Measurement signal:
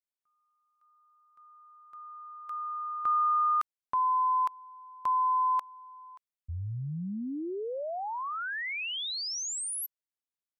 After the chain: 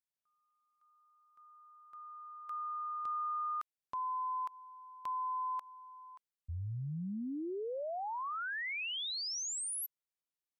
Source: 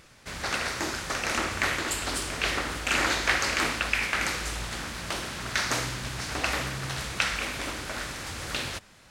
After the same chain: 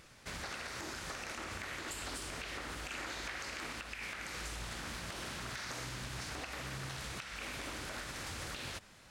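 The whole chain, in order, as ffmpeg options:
-af "acompressor=threshold=0.0282:ratio=6:attack=0.27:release=179:knee=1:detection=rms,volume=0.631"

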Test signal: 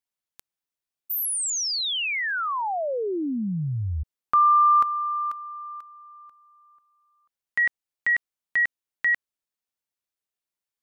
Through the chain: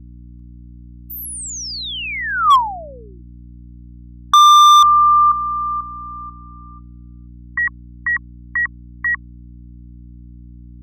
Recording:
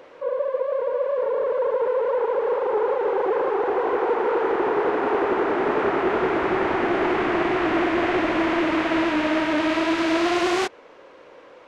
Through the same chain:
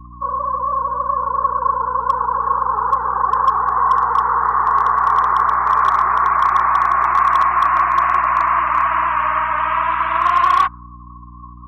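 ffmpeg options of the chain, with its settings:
-af "highpass=f=1100:t=q:w=13,highshelf=f=7500:g=-2.5,afftdn=nr=36:nf=-28,aeval=exprs='val(0)+0.0141*(sin(2*PI*60*n/s)+sin(2*PI*2*60*n/s)/2+sin(2*PI*3*60*n/s)/3+sin(2*PI*4*60*n/s)/4+sin(2*PI*5*60*n/s)/5)':c=same,volume=2.11,asoftclip=hard,volume=0.473"

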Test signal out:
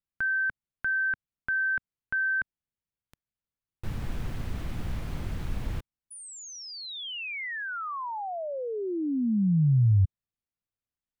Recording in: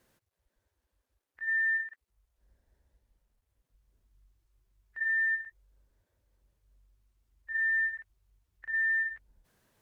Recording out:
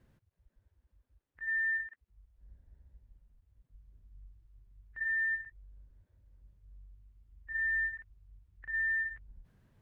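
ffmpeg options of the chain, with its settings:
-af "bass=f=250:g=15,treble=f=4000:g=-10,volume=0.708"

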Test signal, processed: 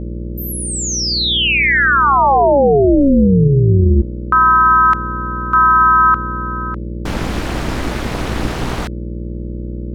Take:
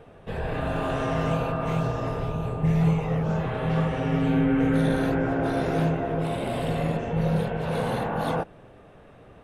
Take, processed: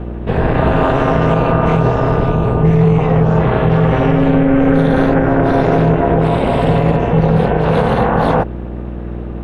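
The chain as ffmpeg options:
-af "aeval=exprs='val(0)+0.0126*(sin(2*PI*60*n/s)+sin(2*PI*2*60*n/s)/2+sin(2*PI*3*60*n/s)/3+sin(2*PI*4*60*n/s)/4+sin(2*PI*5*60*n/s)/5)':c=same,aemphasis=mode=reproduction:type=75fm,tremolo=f=280:d=0.824,alimiter=level_in=8.91:limit=0.891:release=50:level=0:latency=1,volume=0.891"

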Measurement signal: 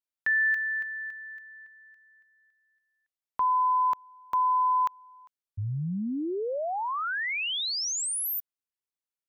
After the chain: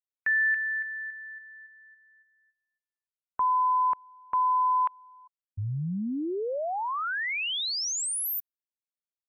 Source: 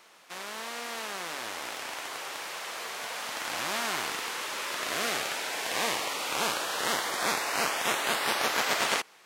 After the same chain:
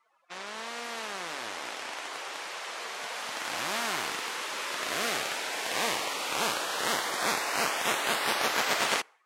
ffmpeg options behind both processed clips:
-af "afftdn=nr=25:nf=-50"

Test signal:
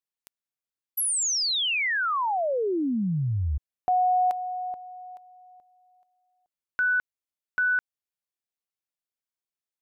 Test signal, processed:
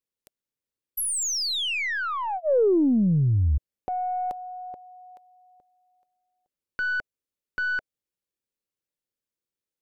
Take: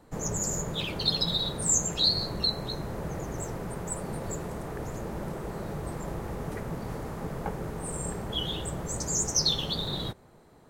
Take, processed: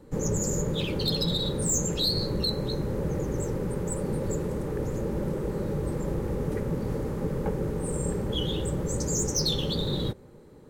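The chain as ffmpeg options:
-af "asuperstop=centerf=680:order=4:qfactor=4.8,aeval=exprs='(tanh(8.91*val(0)+0.15)-tanh(0.15))/8.91':c=same,lowshelf=f=690:t=q:w=1.5:g=6.5,acontrast=30,volume=0.531"

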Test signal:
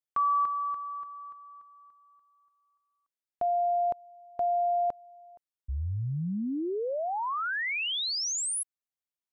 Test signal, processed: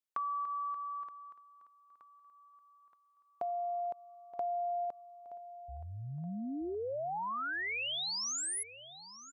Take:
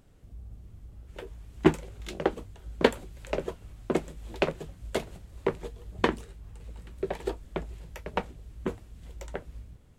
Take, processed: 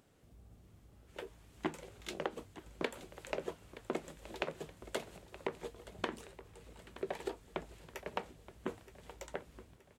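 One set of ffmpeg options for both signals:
-filter_complex "[0:a]highpass=f=290:p=1,acompressor=threshold=0.0224:ratio=12:attack=31:release=105:knee=6:detection=rms,asplit=2[s0][s1];[s1]aecho=0:1:923|1846|2769|3692:0.158|0.0729|0.0335|0.0154[s2];[s0][s2]amix=inputs=2:normalize=0,volume=0.794"

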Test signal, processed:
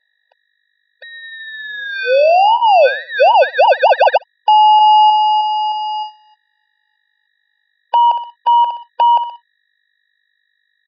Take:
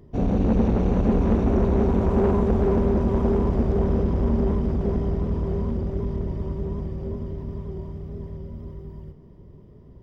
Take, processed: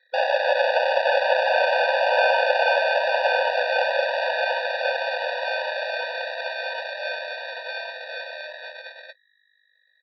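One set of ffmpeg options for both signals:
-filter_complex "[0:a]asplit=2[s0][s1];[s1]adelay=62,lowpass=f=1800:p=1,volume=0.224,asplit=2[s2][s3];[s3]adelay=62,lowpass=f=1800:p=1,volume=0.45,asplit=2[s4][s5];[s5]adelay=62,lowpass=f=1800:p=1,volume=0.45,asplit=2[s6][s7];[s7]adelay=62,lowpass=f=1800:p=1,volume=0.45[s8];[s0][s2][s4][s6][s8]amix=inputs=5:normalize=0,anlmdn=0.398,agate=range=0.00141:threshold=0.0141:ratio=16:detection=peak,lowshelf=f=390:g=-10.5,asplit=2[s9][s10];[s10]acompressor=mode=upward:threshold=0.1:ratio=2.5,volume=0.841[s11];[s9][s11]amix=inputs=2:normalize=0,aeval=exprs='val(0)+0.00251*(sin(2*PI*50*n/s)+sin(2*PI*2*50*n/s)/2+sin(2*PI*3*50*n/s)/3+sin(2*PI*4*50*n/s)/4+sin(2*PI*5*50*n/s)/5)':c=same,afreqshift=64,acrusher=samples=22:mix=1:aa=0.000001,acrossover=split=2700[s12][s13];[s13]acompressor=threshold=0.0251:ratio=4:attack=1:release=60[s14];[s12][s14]amix=inputs=2:normalize=0,aresample=11025,aresample=44100,alimiter=level_in=2.66:limit=0.891:release=50:level=0:latency=1,afftfilt=real='re*eq(mod(floor(b*sr/1024/490),2),1)':imag='im*eq(mod(floor(b*sr/1024/490),2),1)':win_size=1024:overlap=0.75"

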